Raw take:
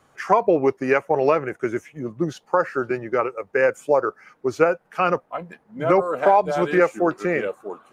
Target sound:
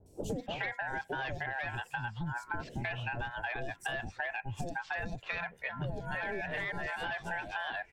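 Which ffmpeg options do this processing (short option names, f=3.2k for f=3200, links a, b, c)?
-filter_complex "[0:a]aeval=exprs='0.75*(cos(1*acos(clip(val(0)/0.75,-1,1)))-cos(1*PI/2))+0.211*(cos(5*acos(clip(val(0)/0.75,-1,1)))-cos(5*PI/2))+0.0211*(cos(8*acos(clip(val(0)/0.75,-1,1)))-cos(8*PI/2))':c=same,acrossover=split=120[a][b];[a]dynaudnorm=f=290:g=9:m=11.5dB[c];[b]aeval=exprs='val(0)*sin(2*PI*1200*n/s)':c=same[d];[c][d]amix=inputs=2:normalize=0,acrossover=split=560|5500[e][f][g];[g]adelay=60[h];[f]adelay=310[i];[e][i][h]amix=inputs=3:normalize=0,alimiter=limit=-11.5dB:level=0:latency=1:release=24,acompressor=threshold=-34dB:ratio=10"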